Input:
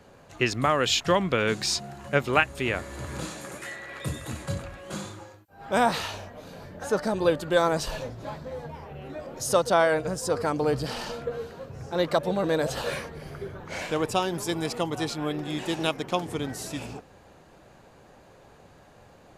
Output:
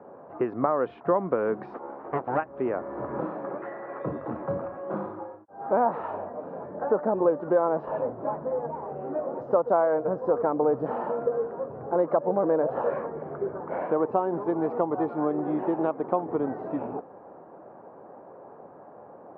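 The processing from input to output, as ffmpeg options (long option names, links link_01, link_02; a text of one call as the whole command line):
ffmpeg -i in.wav -filter_complex "[0:a]asplit=3[link_01][link_02][link_03];[link_01]afade=type=out:start_time=1.73:duration=0.02[link_04];[link_02]aeval=exprs='abs(val(0))':channel_layout=same,afade=type=in:start_time=1.73:duration=0.02,afade=type=out:start_time=2.37:duration=0.02[link_05];[link_03]afade=type=in:start_time=2.37:duration=0.02[link_06];[link_04][link_05][link_06]amix=inputs=3:normalize=0,highpass=290,acompressor=threshold=-31dB:ratio=2.5,lowpass=frequency=1100:width=0.5412,lowpass=frequency=1100:width=1.3066,volume=9dB" out.wav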